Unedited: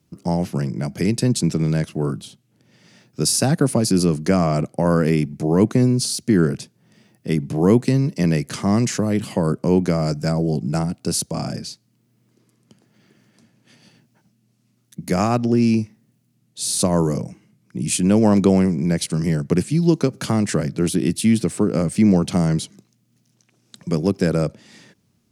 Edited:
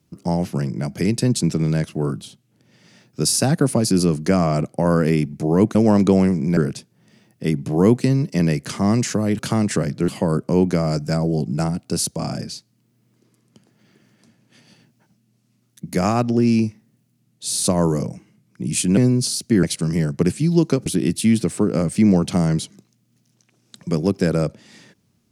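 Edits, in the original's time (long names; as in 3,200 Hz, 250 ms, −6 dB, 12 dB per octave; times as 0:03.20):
0:05.75–0:06.41: swap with 0:18.12–0:18.94
0:20.17–0:20.86: move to 0:09.23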